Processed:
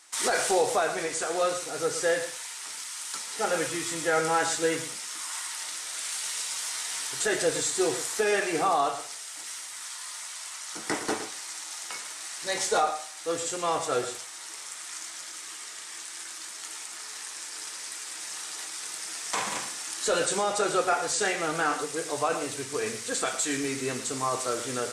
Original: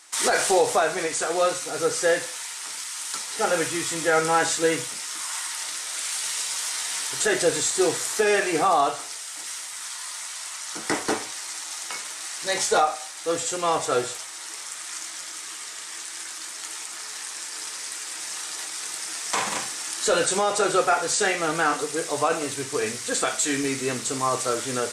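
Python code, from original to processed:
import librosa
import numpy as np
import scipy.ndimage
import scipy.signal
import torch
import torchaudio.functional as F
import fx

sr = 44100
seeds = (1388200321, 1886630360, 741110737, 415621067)

y = x + 10.0 ** (-12.0 / 20.0) * np.pad(x, (int(113 * sr / 1000.0), 0))[:len(x)]
y = y * 10.0 ** (-4.5 / 20.0)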